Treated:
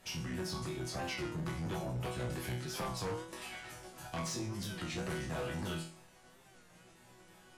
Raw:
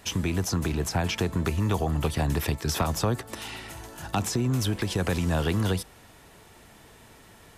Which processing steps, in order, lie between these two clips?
pitch shifter swept by a sawtooth −5 semitones, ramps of 331 ms
resonators tuned to a chord B2 sus4, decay 0.45 s
sine wavefolder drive 8 dB, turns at −30.5 dBFS
wow of a warped record 33 1/3 rpm, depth 100 cents
level −3 dB

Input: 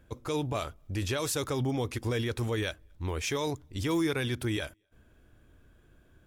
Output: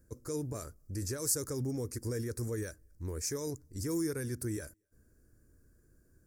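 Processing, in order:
drawn EQ curve 480 Hz 0 dB, 770 Hz −13 dB, 1,700 Hz −4 dB, 3,300 Hz −27 dB, 4,700 Hz +3 dB, 7,900 Hz +9 dB
level −5 dB

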